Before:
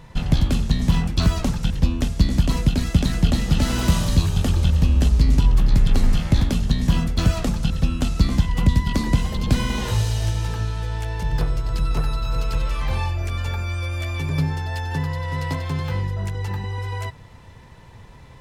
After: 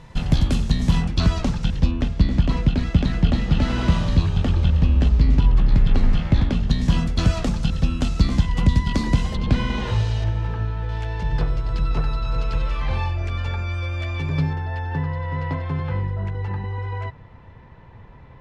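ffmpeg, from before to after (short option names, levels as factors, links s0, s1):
-af "asetnsamples=n=441:p=0,asendcmd='1.05 lowpass f 5700;1.91 lowpass f 3300;6.7 lowpass f 7100;9.36 lowpass f 3500;10.24 lowpass f 2100;10.89 lowpass f 4000;14.53 lowpass f 2100',lowpass=9800"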